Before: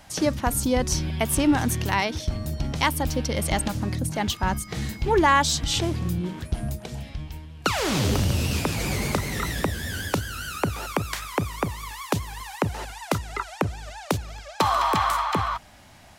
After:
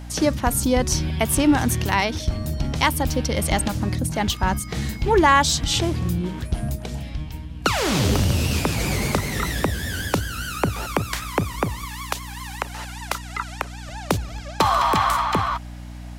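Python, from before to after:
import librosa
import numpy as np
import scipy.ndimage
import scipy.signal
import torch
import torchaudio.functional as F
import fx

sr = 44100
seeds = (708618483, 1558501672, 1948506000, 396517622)

y = fx.highpass(x, sr, hz=920.0, slope=12, at=(11.85, 13.89))
y = fx.add_hum(y, sr, base_hz=60, snr_db=13)
y = F.gain(torch.from_numpy(y), 3.0).numpy()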